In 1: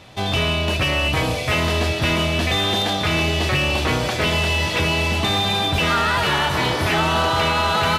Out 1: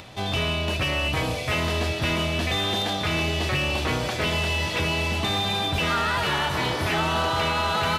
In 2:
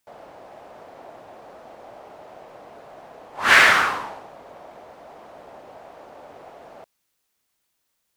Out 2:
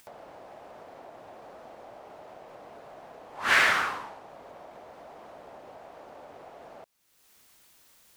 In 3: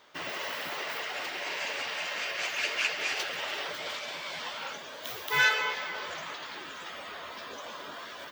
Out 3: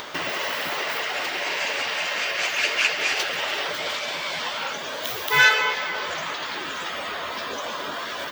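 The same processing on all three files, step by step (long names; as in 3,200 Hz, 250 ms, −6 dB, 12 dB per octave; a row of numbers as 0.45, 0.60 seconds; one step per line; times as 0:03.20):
upward compression, threshold −32 dBFS
loudness normalisation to −24 LKFS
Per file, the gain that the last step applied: −5.0, −8.0, +8.0 decibels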